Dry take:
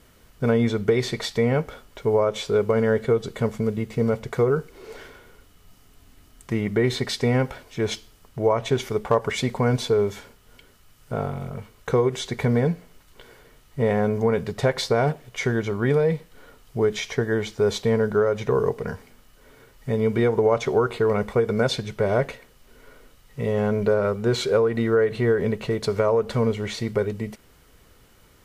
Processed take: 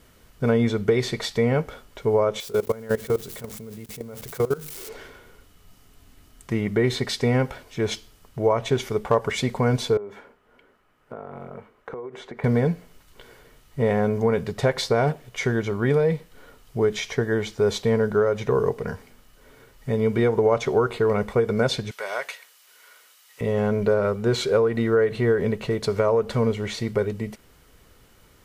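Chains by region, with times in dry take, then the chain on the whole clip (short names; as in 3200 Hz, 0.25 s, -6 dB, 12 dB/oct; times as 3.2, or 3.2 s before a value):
2.4–4.89 switching spikes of -25 dBFS + notches 50/100/150/200/250/300/350 Hz + level quantiser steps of 19 dB
9.97–12.44 three-band isolator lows -16 dB, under 220 Hz, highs -20 dB, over 2200 Hz + compressor 12:1, threshold -31 dBFS
21.91–23.41 HPF 980 Hz + high shelf 2700 Hz +8 dB
whole clip: dry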